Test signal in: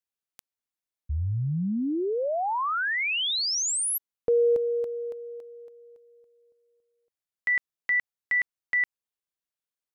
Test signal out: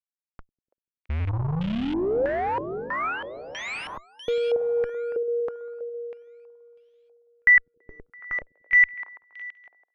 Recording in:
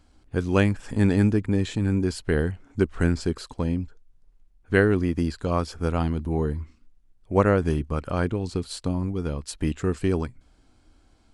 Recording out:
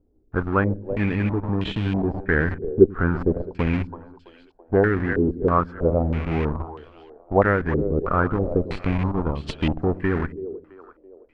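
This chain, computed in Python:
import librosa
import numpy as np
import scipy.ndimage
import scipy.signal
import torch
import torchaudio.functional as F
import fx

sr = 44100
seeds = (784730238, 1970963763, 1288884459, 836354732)

p1 = fx.law_mismatch(x, sr, coded='A')
p2 = fx.echo_split(p1, sr, split_hz=330.0, low_ms=97, high_ms=332, feedback_pct=52, wet_db=-12.0)
p3 = fx.schmitt(p2, sr, flips_db=-26.0)
p4 = p2 + (p3 * 10.0 ** (-4.5 / 20.0))
p5 = fx.rider(p4, sr, range_db=4, speed_s=0.5)
p6 = fx.filter_held_lowpass(p5, sr, hz=3.1, low_hz=420.0, high_hz=3100.0)
y = p6 * 10.0 ** (-2.0 / 20.0)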